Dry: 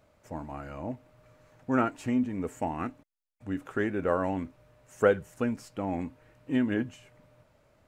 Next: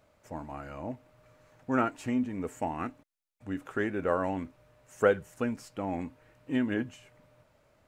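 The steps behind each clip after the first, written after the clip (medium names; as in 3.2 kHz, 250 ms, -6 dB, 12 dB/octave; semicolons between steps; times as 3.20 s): bass shelf 420 Hz -3 dB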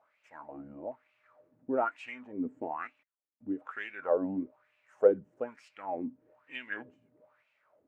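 wah-wah 1.1 Hz 230–2600 Hz, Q 4.6; trim +6.5 dB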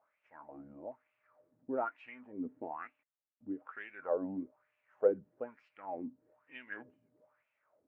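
low-pass 2.3 kHz 12 dB/octave; trim -5.5 dB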